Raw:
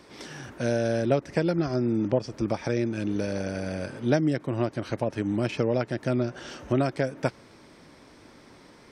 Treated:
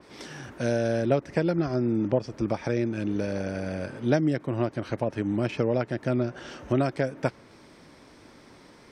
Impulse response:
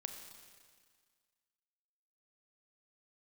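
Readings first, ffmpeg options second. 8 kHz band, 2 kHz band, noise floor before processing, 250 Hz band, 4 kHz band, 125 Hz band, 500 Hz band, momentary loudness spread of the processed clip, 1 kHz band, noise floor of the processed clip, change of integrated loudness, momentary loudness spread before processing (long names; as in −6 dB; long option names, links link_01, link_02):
can't be measured, −0.5 dB, −53 dBFS, 0.0 dB, −2.0 dB, 0.0 dB, 0.0 dB, 7 LU, 0.0 dB, −53 dBFS, 0.0 dB, 7 LU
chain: -af "adynamicequalizer=threshold=0.00355:dfrequency=3300:dqfactor=0.7:tfrequency=3300:tqfactor=0.7:attack=5:release=100:ratio=0.375:range=2.5:mode=cutabove:tftype=highshelf"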